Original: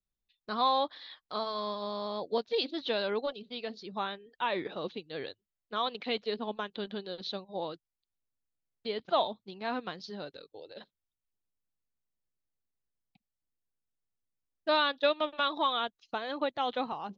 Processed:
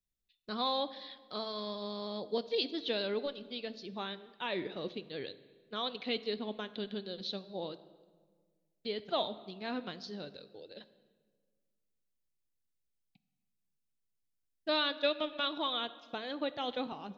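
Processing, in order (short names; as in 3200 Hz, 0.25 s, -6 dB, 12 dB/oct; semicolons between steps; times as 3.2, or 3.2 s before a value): bell 1000 Hz -9 dB 1.5 oct; on a send: reverb RT60 1.6 s, pre-delay 9 ms, DRR 14 dB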